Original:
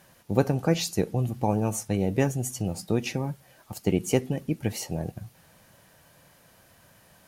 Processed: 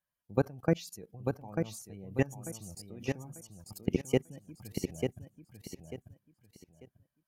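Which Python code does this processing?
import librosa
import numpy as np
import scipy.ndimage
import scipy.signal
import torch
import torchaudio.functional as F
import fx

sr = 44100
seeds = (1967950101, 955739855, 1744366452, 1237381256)

p1 = fx.bin_expand(x, sr, power=1.5)
p2 = fx.level_steps(p1, sr, step_db=23)
y = p2 + fx.echo_feedback(p2, sr, ms=893, feedback_pct=27, wet_db=-5.0, dry=0)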